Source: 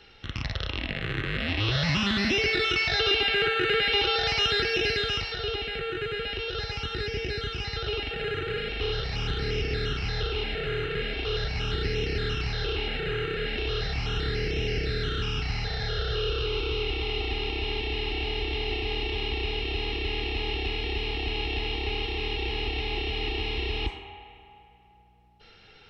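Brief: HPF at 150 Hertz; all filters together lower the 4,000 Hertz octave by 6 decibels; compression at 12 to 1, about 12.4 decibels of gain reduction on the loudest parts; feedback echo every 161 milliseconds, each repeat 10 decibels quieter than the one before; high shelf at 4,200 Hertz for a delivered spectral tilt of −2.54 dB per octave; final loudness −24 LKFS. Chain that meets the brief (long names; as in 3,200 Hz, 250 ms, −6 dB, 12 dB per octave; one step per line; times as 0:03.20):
high-pass filter 150 Hz
parametric band 4,000 Hz −7.5 dB
high-shelf EQ 4,200 Hz −3 dB
downward compressor 12 to 1, threshold −35 dBFS
repeating echo 161 ms, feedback 32%, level −10 dB
level +14 dB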